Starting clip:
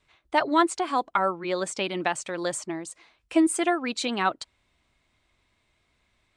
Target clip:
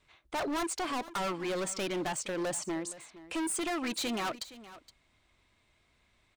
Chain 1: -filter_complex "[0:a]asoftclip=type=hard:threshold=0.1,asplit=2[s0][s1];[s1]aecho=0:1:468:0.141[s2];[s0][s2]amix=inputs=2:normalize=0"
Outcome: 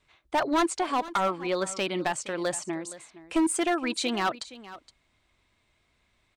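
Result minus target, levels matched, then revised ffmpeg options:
hard clipper: distortion -8 dB
-filter_complex "[0:a]asoftclip=type=hard:threshold=0.0282,asplit=2[s0][s1];[s1]aecho=0:1:468:0.141[s2];[s0][s2]amix=inputs=2:normalize=0"

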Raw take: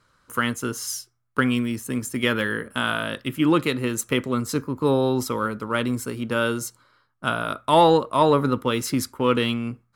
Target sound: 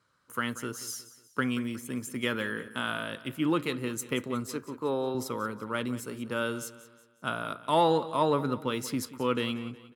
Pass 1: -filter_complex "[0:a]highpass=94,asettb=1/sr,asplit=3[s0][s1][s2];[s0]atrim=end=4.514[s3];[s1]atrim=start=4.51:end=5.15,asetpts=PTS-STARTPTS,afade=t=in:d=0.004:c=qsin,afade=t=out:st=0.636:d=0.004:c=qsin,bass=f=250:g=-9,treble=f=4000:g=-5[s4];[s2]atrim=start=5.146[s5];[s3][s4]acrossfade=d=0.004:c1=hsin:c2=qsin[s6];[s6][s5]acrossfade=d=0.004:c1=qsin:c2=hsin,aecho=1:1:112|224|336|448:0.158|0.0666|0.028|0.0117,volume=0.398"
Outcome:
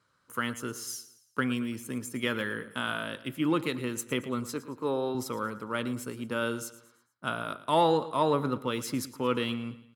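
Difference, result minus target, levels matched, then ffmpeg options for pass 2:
echo 70 ms early
-filter_complex "[0:a]highpass=94,asettb=1/sr,asplit=3[s0][s1][s2];[s0]atrim=end=4.514[s3];[s1]atrim=start=4.51:end=5.15,asetpts=PTS-STARTPTS,afade=t=in:d=0.004:c=qsin,afade=t=out:st=0.636:d=0.004:c=qsin,bass=f=250:g=-9,treble=f=4000:g=-5[s4];[s2]atrim=start=5.146[s5];[s3][s4]acrossfade=d=0.004:c1=hsin:c2=qsin[s6];[s6][s5]acrossfade=d=0.004:c1=qsin:c2=hsin,aecho=1:1:182|364|546|728:0.158|0.0666|0.028|0.0117,volume=0.398"

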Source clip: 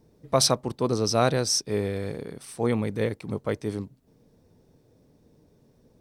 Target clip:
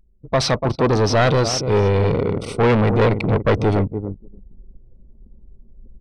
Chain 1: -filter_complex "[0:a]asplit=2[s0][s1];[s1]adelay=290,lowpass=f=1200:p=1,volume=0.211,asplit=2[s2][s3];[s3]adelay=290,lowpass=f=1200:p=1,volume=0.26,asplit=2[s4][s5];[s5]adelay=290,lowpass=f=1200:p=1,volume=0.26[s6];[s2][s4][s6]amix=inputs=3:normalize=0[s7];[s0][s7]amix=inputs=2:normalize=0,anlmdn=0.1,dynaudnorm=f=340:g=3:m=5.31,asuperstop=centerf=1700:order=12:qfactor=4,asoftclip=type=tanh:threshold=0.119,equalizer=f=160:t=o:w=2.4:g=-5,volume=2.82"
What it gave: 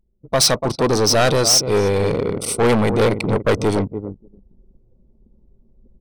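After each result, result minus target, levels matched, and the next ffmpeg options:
4 kHz band +6.0 dB; 125 Hz band -5.5 dB
-filter_complex "[0:a]asplit=2[s0][s1];[s1]adelay=290,lowpass=f=1200:p=1,volume=0.211,asplit=2[s2][s3];[s3]adelay=290,lowpass=f=1200:p=1,volume=0.26,asplit=2[s4][s5];[s5]adelay=290,lowpass=f=1200:p=1,volume=0.26[s6];[s2][s4][s6]amix=inputs=3:normalize=0[s7];[s0][s7]amix=inputs=2:normalize=0,anlmdn=0.1,dynaudnorm=f=340:g=3:m=5.31,asuperstop=centerf=1700:order=12:qfactor=4,asoftclip=type=tanh:threshold=0.119,lowpass=3400,equalizer=f=160:t=o:w=2.4:g=-5,volume=2.82"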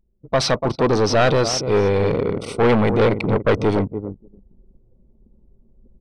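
125 Hz band -3.5 dB
-filter_complex "[0:a]asplit=2[s0][s1];[s1]adelay=290,lowpass=f=1200:p=1,volume=0.211,asplit=2[s2][s3];[s3]adelay=290,lowpass=f=1200:p=1,volume=0.26,asplit=2[s4][s5];[s5]adelay=290,lowpass=f=1200:p=1,volume=0.26[s6];[s2][s4][s6]amix=inputs=3:normalize=0[s7];[s0][s7]amix=inputs=2:normalize=0,anlmdn=0.1,dynaudnorm=f=340:g=3:m=5.31,asuperstop=centerf=1700:order=12:qfactor=4,lowshelf=f=100:g=10.5,asoftclip=type=tanh:threshold=0.119,lowpass=3400,equalizer=f=160:t=o:w=2.4:g=-5,volume=2.82"

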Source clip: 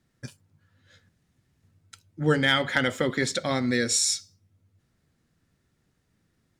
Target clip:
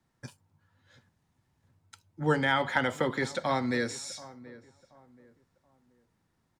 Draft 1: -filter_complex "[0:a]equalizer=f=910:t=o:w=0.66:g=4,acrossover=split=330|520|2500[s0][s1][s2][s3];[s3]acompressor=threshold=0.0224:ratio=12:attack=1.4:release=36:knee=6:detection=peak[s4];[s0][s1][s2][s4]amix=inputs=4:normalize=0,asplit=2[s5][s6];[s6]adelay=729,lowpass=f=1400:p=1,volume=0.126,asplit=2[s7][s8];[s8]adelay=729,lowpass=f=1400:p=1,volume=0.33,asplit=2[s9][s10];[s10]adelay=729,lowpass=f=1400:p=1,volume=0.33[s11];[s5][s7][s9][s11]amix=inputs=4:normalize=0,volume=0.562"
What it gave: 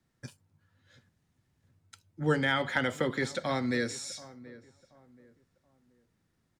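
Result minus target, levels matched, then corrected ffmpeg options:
1 kHz band -3.5 dB
-filter_complex "[0:a]equalizer=f=910:t=o:w=0.66:g=11.5,acrossover=split=330|520|2500[s0][s1][s2][s3];[s3]acompressor=threshold=0.0224:ratio=12:attack=1.4:release=36:knee=6:detection=peak[s4];[s0][s1][s2][s4]amix=inputs=4:normalize=0,asplit=2[s5][s6];[s6]adelay=729,lowpass=f=1400:p=1,volume=0.126,asplit=2[s7][s8];[s8]adelay=729,lowpass=f=1400:p=1,volume=0.33,asplit=2[s9][s10];[s10]adelay=729,lowpass=f=1400:p=1,volume=0.33[s11];[s5][s7][s9][s11]amix=inputs=4:normalize=0,volume=0.562"

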